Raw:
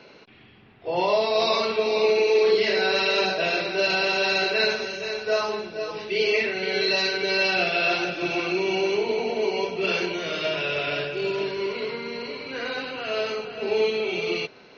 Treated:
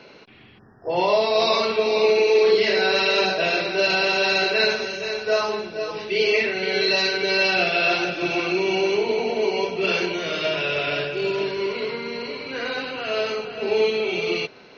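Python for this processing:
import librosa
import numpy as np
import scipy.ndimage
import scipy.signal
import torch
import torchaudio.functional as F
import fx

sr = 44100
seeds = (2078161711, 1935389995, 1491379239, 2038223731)

y = fx.spec_erase(x, sr, start_s=0.59, length_s=0.31, low_hz=1900.0, high_hz=4900.0)
y = F.gain(torch.from_numpy(y), 2.5).numpy()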